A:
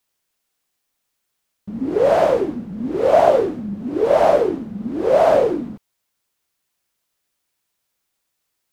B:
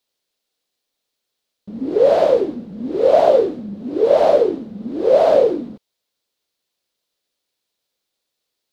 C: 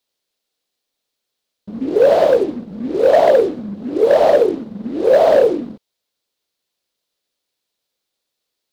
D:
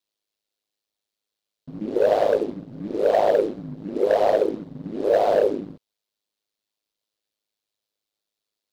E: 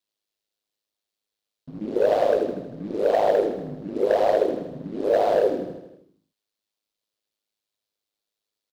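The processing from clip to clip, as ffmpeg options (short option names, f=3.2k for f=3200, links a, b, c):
-af "equalizer=f=250:t=o:w=1:g=4,equalizer=f=500:t=o:w=1:g=10,equalizer=f=4k:t=o:w=1:g=11,volume=-7dB"
-filter_complex "[0:a]asplit=2[a][b];[b]acrusher=bits=4:mix=0:aa=0.5,volume=-11.5dB[c];[a][c]amix=inputs=2:normalize=0,asoftclip=type=hard:threshold=-5dB"
-af "aeval=exprs='val(0)*sin(2*PI*52*n/s)':c=same,volume=-4.5dB"
-af "aecho=1:1:79|158|237|316|395|474|553:0.299|0.179|0.107|0.0645|0.0387|0.0232|0.0139,volume=-1.5dB"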